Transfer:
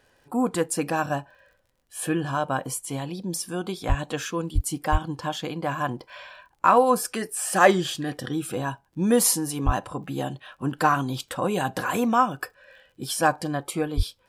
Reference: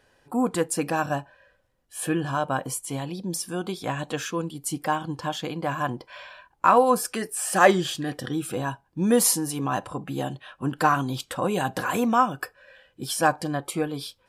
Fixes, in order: de-click; de-plosive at 3.88/4.54/4.91/9.65/13.96 s

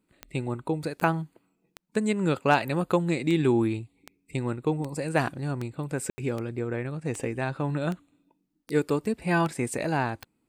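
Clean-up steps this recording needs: de-click; room tone fill 6.10–6.18 s

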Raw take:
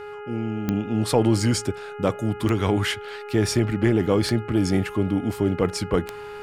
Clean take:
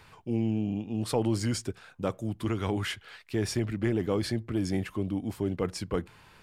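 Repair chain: de-click; de-hum 415.6 Hz, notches 7; band-stop 1.4 kHz, Q 30; gain correction -8 dB, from 0.68 s

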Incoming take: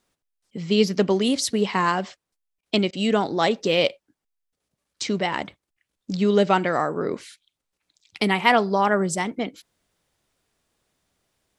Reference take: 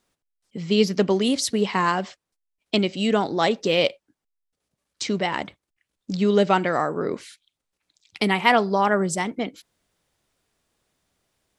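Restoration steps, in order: interpolate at 2.61/2.91 s, 18 ms

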